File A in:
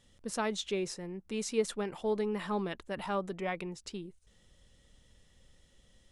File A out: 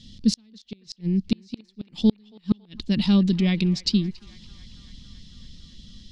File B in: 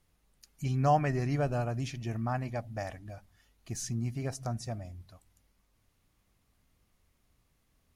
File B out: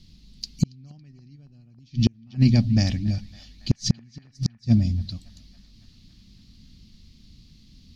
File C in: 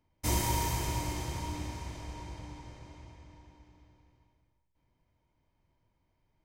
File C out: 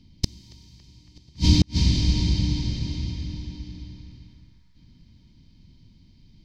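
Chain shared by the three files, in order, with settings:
drawn EQ curve 120 Hz 0 dB, 220 Hz +6 dB, 440 Hz −15 dB, 640 Hz −22 dB, 1,400 Hz −22 dB, 4,500 Hz +8 dB, 9,300 Hz −20 dB
gate with flip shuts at −27 dBFS, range −39 dB
feedback echo with a band-pass in the loop 278 ms, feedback 82%, band-pass 1,400 Hz, level −18 dB
loudness normalisation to −24 LKFS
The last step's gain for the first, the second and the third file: +18.0, +20.5, +22.5 decibels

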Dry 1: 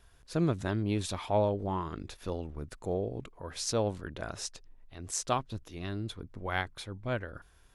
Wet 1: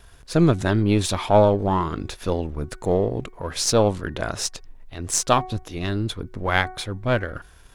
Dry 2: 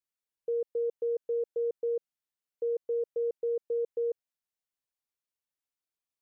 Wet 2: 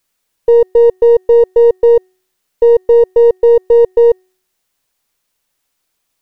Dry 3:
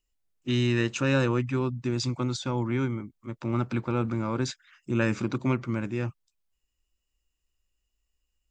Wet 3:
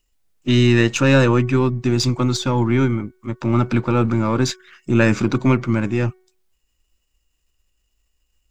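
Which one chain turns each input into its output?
gain on one half-wave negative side −3 dB
hum removal 371.1 Hz, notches 6
normalise the peak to −1.5 dBFS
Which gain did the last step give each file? +13.0, +24.5, +12.0 decibels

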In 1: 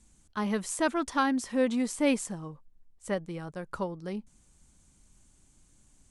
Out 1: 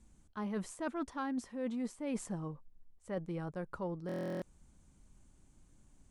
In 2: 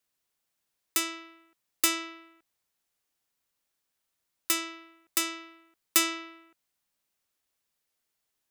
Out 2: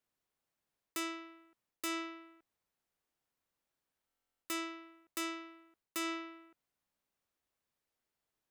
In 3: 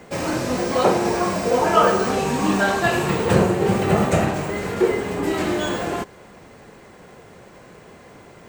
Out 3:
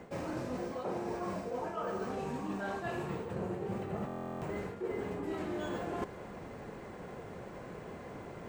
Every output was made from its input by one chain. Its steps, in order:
high-shelf EQ 2,200 Hz −10.5 dB
reversed playback
downward compressor 16 to 1, threshold −34 dBFS
reversed playback
buffer that repeats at 0:04.07, samples 1,024, times 14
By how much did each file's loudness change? −9.0, −12.5, −19.0 LU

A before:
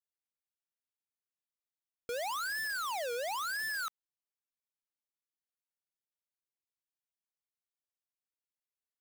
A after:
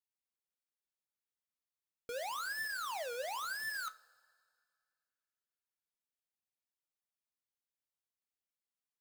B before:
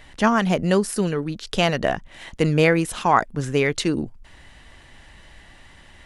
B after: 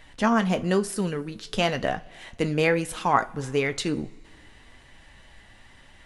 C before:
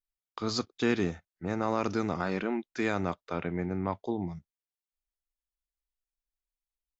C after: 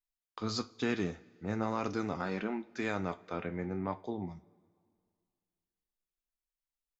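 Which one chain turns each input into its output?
flanger 1 Hz, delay 6.1 ms, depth 3.8 ms, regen +64%
coupled-rooms reverb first 0.3 s, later 2.2 s, from −19 dB, DRR 12.5 dB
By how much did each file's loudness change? −4.0, −4.0, −4.5 LU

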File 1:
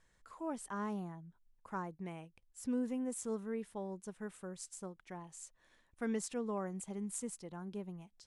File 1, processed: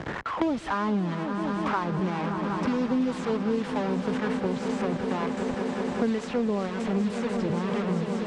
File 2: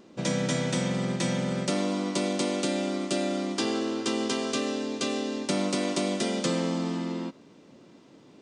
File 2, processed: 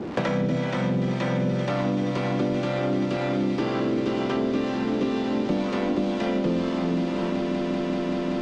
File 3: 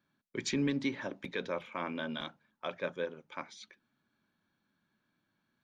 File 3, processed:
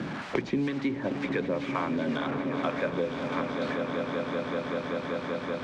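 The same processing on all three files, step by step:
linear delta modulator 64 kbit/s, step −39.5 dBFS
noise gate with hold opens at −38 dBFS
high-pass filter 52 Hz
high-shelf EQ 3,400 Hz −10.5 dB
soft clipping −23 dBFS
two-band tremolo in antiphase 2 Hz, depth 70%, crossover 620 Hz
high-frequency loss of the air 130 metres
echo that builds up and dies away 192 ms, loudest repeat 5, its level −14 dB
multiband upward and downward compressor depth 100%
normalise the peak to −12 dBFS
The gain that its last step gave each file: +16.5, +7.5, +11.5 decibels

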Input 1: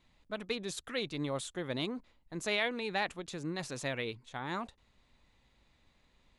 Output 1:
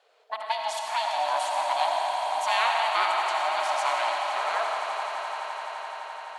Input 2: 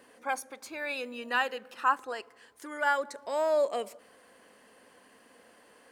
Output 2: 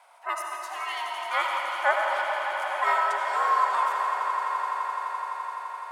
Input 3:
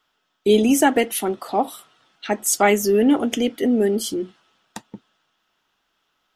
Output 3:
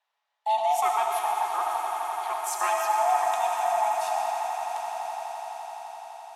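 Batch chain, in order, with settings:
ring modulation 450 Hz
high-pass filter 580 Hz 24 dB per octave
parametric band 800 Hz +8 dB 1.3 octaves
echo that builds up and dies away 85 ms, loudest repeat 8, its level −14.5 dB
comb and all-pass reverb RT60 3.5 s, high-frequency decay 0.8×, pre-delay 35 ms, DRR 0 dB
loudness normalisation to −27 LKFS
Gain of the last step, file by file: +6.5, +1.5, −11.0 decibels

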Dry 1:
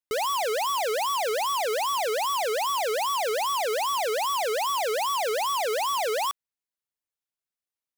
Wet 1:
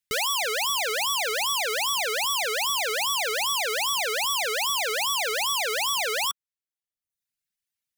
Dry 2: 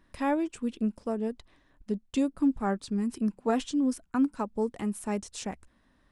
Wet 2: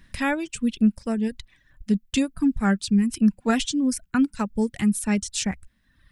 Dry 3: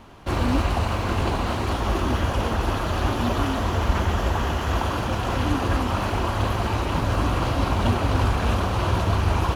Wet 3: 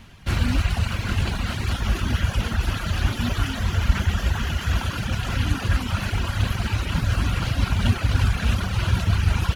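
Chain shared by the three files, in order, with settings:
flat-topped bell 590 Hz −11.5 dB 2.5 octaves
reverb reduction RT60 0.85 s
dynamic equaliser 1,400 Hz, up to +5 dB, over −57 dBFS, Q 7.5
loudness normalisation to −24 LKFS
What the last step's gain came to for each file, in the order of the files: +7.0, +13.0, +4.0 decibels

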